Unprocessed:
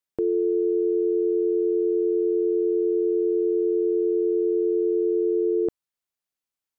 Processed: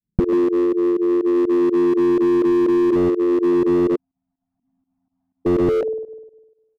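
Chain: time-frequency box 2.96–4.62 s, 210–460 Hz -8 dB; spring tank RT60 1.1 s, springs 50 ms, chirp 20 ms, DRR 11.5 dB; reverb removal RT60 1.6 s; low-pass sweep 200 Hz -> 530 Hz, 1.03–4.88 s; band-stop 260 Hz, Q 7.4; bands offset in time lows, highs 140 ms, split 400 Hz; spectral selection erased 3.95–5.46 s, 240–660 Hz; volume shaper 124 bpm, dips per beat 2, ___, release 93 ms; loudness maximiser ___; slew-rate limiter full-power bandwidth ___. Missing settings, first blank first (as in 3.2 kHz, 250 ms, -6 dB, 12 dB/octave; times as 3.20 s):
-19 dB, +22.5 dB, 65 Hz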